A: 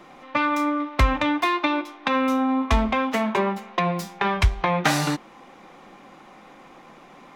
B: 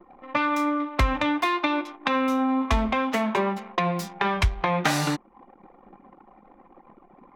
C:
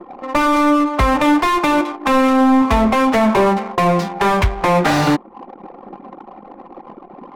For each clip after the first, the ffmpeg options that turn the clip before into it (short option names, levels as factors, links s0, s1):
-af "anlmdn=0.251,acompressor=threshold=0.0158:ratio=1.5,volume=1.68"
-filter_complex "[0:a]asplit=2[s0][s1];[s1]highpass=f=720:p=1,volume=12.6,asoftclip=type=tanh:threshold=0.398[s2];[s0][s2]amix=inputs=2:normalize=0,lowpass=f=4200:p=1,volume=0.501,tiltshelf=f=770:g=6.5,adynamicsmooth=sensitivity=7.5:basefreq=1700,volume=1.33"